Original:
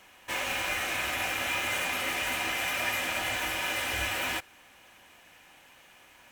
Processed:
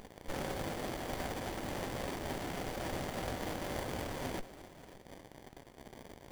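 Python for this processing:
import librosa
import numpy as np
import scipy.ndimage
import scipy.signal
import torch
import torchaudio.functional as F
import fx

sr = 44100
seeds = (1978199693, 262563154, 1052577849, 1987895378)

p1 = fx.band_shelf(x, sr, hz=2000.0, db=-10.0, octaves=1.3)
p2 = fx.notch_comb(p1, sr, f0_hz=1200.0)
p3 = fx.dmg_crackle(p2, sr, seeds[0], per_s=330.0, level_db=-49.0)
p4 = fx.rider(p3, sr, range_db=10, speed_s=0.5)
p5 = p3 + F.gain(torch.from_numpy(p4), 1.0).numpy()
p6 = fx.high_shelf(p5, sr, hz=3900.0, db=10.5)
p7 = p6 + fx.echo_multitap(p6, sr, ms=(202, 549), db=(-17.0, -16.5), dry=0)
p8 = fx.running_max(p7, sr, window=33)
y = F.gain(torch.from_numpy(p8), -8.5).numpy()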